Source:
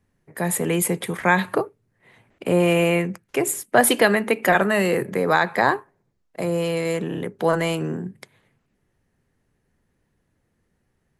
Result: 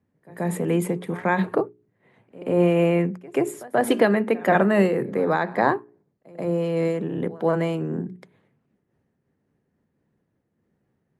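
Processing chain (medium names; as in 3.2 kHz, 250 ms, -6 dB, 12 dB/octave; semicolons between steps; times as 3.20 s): high-pass 190 Hz 12 dB/octave; tilt EQ -3.5 dB/octave; hum notches 60/120/180/240/300/360/420 Hz; pre-echo 133 ms -21.5 dB; random flutter of the level, depth 60%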